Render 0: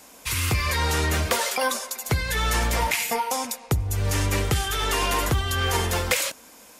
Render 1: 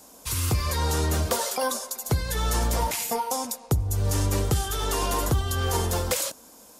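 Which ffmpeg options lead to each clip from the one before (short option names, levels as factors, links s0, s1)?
-af "equalizer=f=2200:t=o:w=1.2:g=-12"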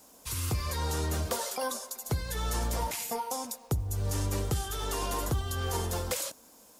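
-af "acrusher=bits=8:mix=0:aa=0.5,volume=0.473"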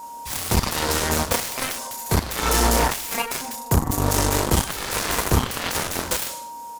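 -af "aeval=exprs='val(0)+0.00708*sin(2*PI*940*n/s)':c=same,aecho=1:1:30|64.5|104.2|149.8|202.3:0.631|0.398|0.251|0.158|0.1,aeval=exprs='0.158*(cos(1*acos(clip(val(0)/0.158,-1,1)))-cos(1*PI/2))+0.0447*(cos(7*acos(clip(val(0)/0.158,-1,1)))-cos(7*PI/2))':c=same,volume=2.51"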